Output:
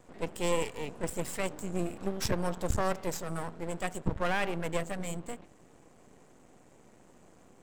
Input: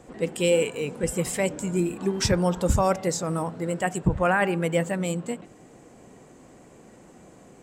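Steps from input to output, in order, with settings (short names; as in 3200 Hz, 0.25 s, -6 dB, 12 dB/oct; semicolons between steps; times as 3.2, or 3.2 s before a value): half-wave rectifier; gain -4.5 dB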